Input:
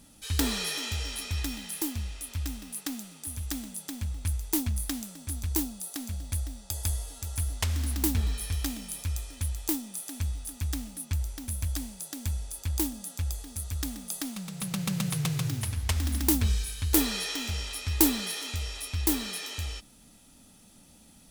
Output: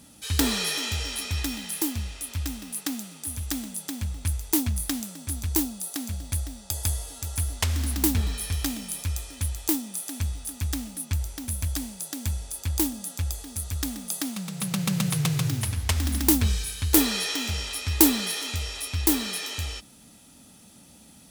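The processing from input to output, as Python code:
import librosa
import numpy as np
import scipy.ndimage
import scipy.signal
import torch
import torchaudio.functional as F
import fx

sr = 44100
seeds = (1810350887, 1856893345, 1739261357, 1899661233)

y = scipy.signal.sosfilt(scipy.signal.butter(2, 67.0, 'highpass', fs=sr, output='sos'), x)
y = y * 10.0 ** (4.5 / 20.0)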